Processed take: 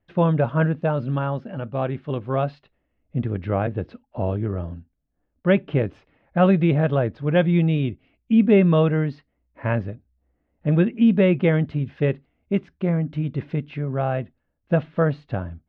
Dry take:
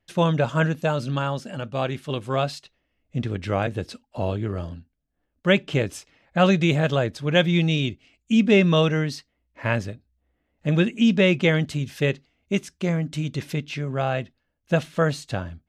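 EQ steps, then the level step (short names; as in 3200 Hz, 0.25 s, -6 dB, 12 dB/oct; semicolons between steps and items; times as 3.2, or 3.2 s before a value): LPF 1500 Hz 6 dB/oct; air absorption 330 m; +2.5 dB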